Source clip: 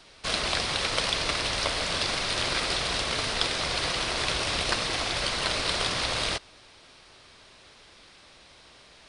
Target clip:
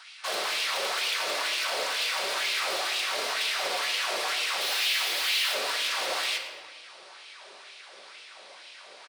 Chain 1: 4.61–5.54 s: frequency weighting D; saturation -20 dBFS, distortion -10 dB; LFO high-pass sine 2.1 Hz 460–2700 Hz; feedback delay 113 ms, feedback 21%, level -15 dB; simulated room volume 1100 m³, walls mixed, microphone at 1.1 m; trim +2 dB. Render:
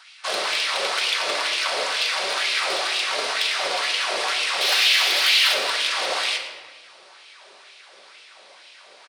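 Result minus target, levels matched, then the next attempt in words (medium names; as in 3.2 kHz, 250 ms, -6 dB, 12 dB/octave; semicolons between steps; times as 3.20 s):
saturation: distortion -7 dB
4.61–5.54 s: frequency weighting D; saturation -32 dBFS, distortion -4 dB; LFO high-pass sine 2.1 Hz 460–2700 Hz; feedback delay 113 ms, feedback 21%, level -15 dB; simulated room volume 1100 m³, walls mixed, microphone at 1.1 m; trim +2 dB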